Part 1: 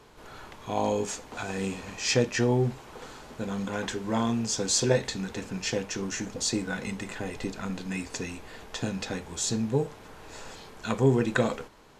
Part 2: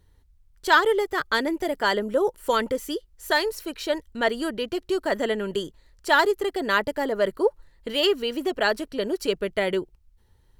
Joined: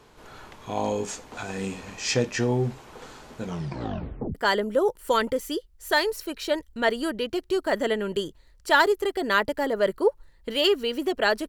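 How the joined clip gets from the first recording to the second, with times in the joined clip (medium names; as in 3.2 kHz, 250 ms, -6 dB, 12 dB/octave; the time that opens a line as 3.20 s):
part 1
3.43 s: tape stop 0.92 s
4.35 s: go over to part 2 from 1.74 s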